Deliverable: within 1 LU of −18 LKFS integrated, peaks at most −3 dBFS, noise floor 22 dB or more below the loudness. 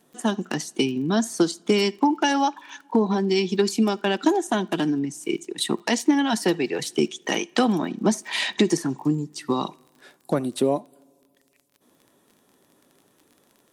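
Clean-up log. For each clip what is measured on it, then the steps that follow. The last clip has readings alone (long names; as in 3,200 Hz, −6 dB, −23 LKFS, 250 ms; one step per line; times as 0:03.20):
crackle rate 28 per second; integrated loudness −24.0 LKFS; sample peak −7.5 dBFS; target loudness −18.0 LKFS
→ click removal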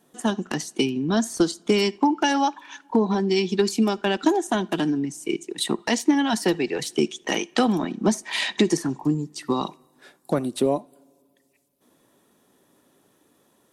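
crackle rate 0 per second; integrated loudness −24.0 LKFS; sample peak −7.5 dBFS; target loudness −18.0 LKFS
→ level +6 dB
brickwall limiter −3 dBFS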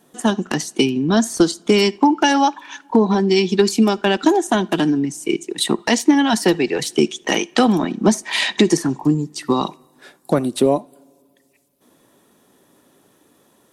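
integrated loudness −18.0 LKFS; sample peak −3.0 dBFS; background noise floor −58 dBFS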